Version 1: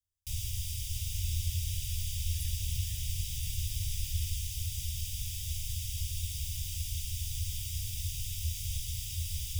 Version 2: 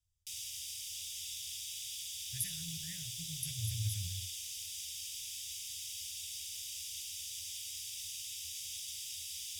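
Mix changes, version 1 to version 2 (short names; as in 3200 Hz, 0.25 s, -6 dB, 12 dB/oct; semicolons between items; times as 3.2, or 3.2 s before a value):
speech +10.0 dB; first sound: add band-pass 5200 Hz, Q 0.53; second sound: add ladder band-pass 3600 Hz, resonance 85%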